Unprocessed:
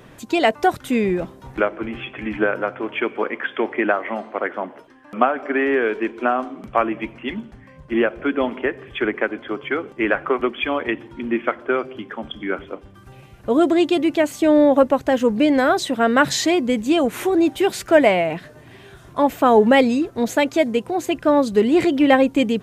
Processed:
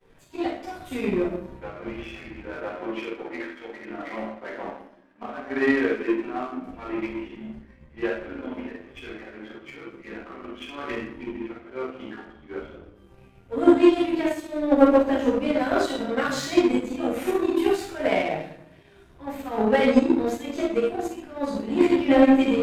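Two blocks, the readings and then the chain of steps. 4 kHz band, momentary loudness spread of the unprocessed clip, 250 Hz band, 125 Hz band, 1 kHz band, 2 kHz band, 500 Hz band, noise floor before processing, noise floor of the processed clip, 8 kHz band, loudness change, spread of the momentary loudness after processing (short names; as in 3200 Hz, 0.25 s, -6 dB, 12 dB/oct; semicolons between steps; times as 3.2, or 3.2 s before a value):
-8.5 dB, 14 LU, -3.5 dB, -5.5 dB, -9.0 dB, -8.5 dB, -5.5 dB, -46 dBFS, -53 dBFS, -10.0 dB, -4.5 dB, 21 LU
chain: auto swell 0.17 s; in parallel at +2.5 dB: compressor, threshold -24 dBFS, peak gain reduction 14 dB; on the sum: chorus voices 4, 0.31 Hz, delay 13 ms, depth 2.2 ms; shoebox room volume 290 m³, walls mixed, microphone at 7.1 m; power-law curve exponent 1.4; gain -18 dB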